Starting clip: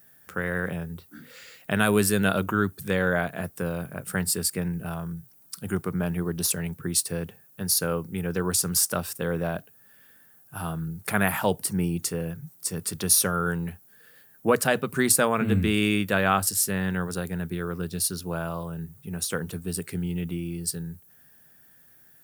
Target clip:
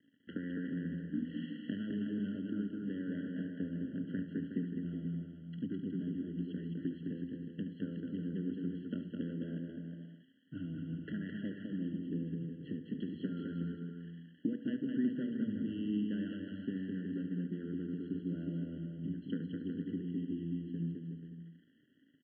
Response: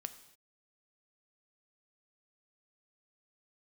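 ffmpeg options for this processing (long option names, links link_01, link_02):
-filter_complex "[0:a]highpass=120,aemphasis=mode=reproduction:type=riaa,acompressor=threshold=-38dB:ratio=12,aeval=exprs='sgn(val(0))*max(abs(val(0))-0.00119,0)':channel_layout=same,asplit=3[link_01][link_02][link_03];[link_01]bandpass=frequency=270:width_type=q:width=8,volume=0dB[link_04];[link_02]bandpass=frequency=2290:width_type=q:width=8,volume=-6dB[link_05];[link_03]bandpass=frequency=3010:width_type=q:width=8,volume=-9dB[link_06];[link_04][link_05][link_06]amix=inputs=3:normalize=0,aecho=1:1:72:0.251,asplit=2[link_07][link_08];[1:a]atrim=start_sample=2205[link_09];[link_08][link_09]afir=irnorm=-1:irlink=0,volume=11.5dB[link_10];[link_07][link_10]amix=inputs=2:normalize=0,aresample=8000,aresample=44100,asplit=2[link_11][link_12];[link_12]aecho=0:1:210|367.5|485.6|574.2|640.7:0.631|0.398|0.251|0.158|0.1[link_13];[link_11][link_13]amix=inputs=2:normalize=0,afftfilt=real='re*eq(mod(floor(b*sr/1024/670),2),0)':imag='im*eq(mod(floor(b*sr/1024/670),2),0)':win_size=1024:overlap=0.75,volume=4dB"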